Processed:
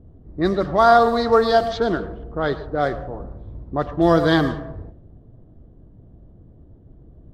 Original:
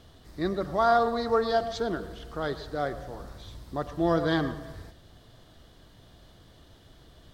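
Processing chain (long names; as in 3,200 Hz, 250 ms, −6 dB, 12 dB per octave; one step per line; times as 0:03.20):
low-pass that shuts in the quiet parts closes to 300 Hz, open at −22.5 dBFS
level +9 dB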